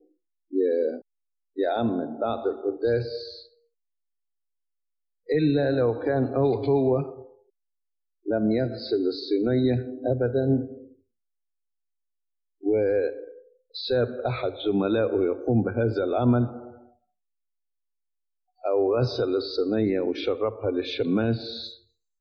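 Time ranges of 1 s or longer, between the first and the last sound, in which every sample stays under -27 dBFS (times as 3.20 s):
3.18–5.30 s
7.03–8.28 s
10.63–12.66 s
16.56–18.65 s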